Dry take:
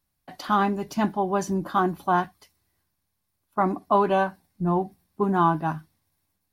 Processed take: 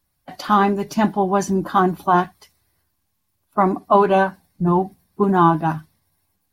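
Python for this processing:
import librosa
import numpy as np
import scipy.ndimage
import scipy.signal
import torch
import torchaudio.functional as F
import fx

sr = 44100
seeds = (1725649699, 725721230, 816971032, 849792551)

y = fx.spec_quant(x, sr, step_db=15)
y = y * 10.0 ** (6.5 / 20.0)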